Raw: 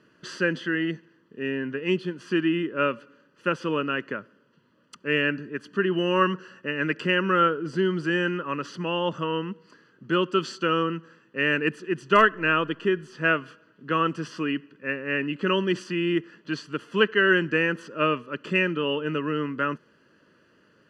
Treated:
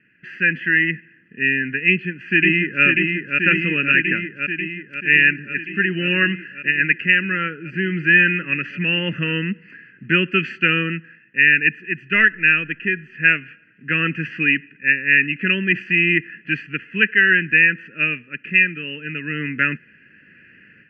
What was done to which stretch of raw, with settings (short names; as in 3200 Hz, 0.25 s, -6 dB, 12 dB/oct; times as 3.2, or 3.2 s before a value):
1.88–2.84 echo throw 0.54 s, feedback 80%, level -4 dB
whole clip: EQ curve 210 Hz 0 dB, 1100 Hz -24 dB, 1700 Hz +9 dB, 2500 Hz +15 dB, 3500 Hz -21 dB, 8900 Hz -28 dB; AGC gain up to 11.5 dB; gain -1 dB